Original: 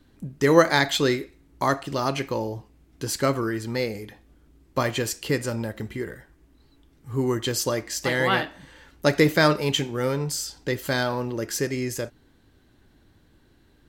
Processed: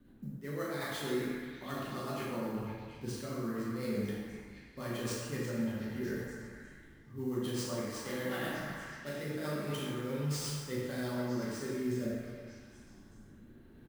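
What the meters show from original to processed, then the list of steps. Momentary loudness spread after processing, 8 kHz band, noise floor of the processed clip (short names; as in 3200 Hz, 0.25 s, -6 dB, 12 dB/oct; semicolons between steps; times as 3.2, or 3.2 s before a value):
15 LU, -13.5 dB, -56 dBFS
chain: low-pass opened by the level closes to 2600 Hz, open at -19 dBFS; bell 210 Hz +9.5 dB 0.49 oct; reverse; compressor 10:1, threshold -35 dBFS, peak gain reduction 25 dB; reverse; flange 1.3 Hz, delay 7.6 ms, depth 9.6 ms, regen -72%; doubler 40 ms -5 dB; rotary speaker horn 8 Hz, later 0.7 Hz, at 10.58; sample-rate reducer 14000 Hz, jitter 20%; on a send: delay with a stepping band-pass 0.241 s, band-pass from 1100 Hz, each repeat 0.7 oct, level -4 dB; on the sum: plate-style reverb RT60 1.5 s, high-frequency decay 0.7×, DRR -4.5 dB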